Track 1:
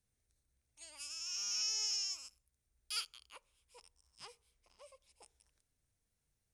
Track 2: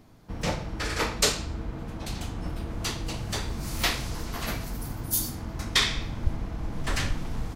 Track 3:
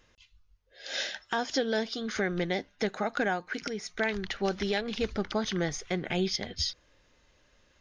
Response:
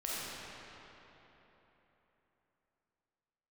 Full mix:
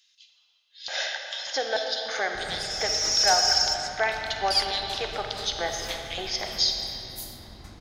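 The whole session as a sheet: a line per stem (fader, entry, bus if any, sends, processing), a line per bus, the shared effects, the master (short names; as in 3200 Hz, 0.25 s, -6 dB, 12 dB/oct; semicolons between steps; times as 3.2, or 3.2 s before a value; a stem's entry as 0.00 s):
-1.0 dB, 1.60 s, send -17 dB, bell 4900 Hz +14.5 dB 0.78 oct; phaser 0.38 Hz, delay 4.8 ms, feedback 66%
-14.0 dB, 2.05 s, send -10 dB, dry
-1.0 dB, 0.00 s, send -3.5 dB, LFO high-pass square 1.7 Hz 750–3900 Hz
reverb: on, RT60 3.7 s, pre-delay 5 ms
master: dry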